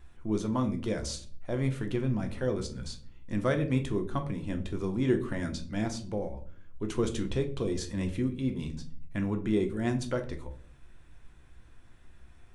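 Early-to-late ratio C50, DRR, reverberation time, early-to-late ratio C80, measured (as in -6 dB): 13.0 dB, 5.0 dB, 0.45 s, 17.5 dB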